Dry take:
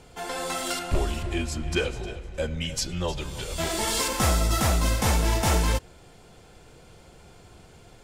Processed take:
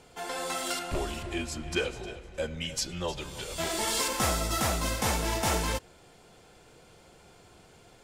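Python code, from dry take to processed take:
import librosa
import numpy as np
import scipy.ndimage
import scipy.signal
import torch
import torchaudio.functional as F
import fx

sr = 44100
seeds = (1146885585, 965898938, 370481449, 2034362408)

y = fx.low_shelf(x, sr, hz=140.0, db=-9.0)
y = y * 10.0 ** (-2.5 / 20.0)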